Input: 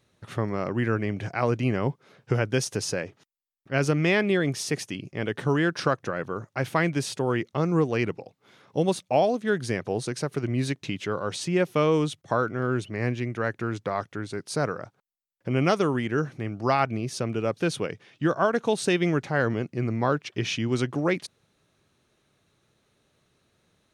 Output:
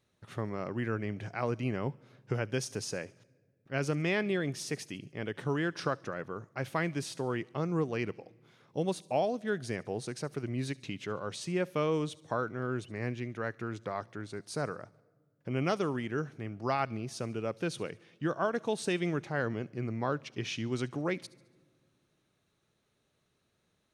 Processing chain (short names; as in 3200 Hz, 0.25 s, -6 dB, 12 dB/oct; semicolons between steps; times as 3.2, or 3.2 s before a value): thin delay 71 ms, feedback 48%, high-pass 3800 Hz, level -17.5 dB; on a send at -24 dB: reverb RT60 1.6 s, pre-delay 5 ms; on the sum: gain -8 dB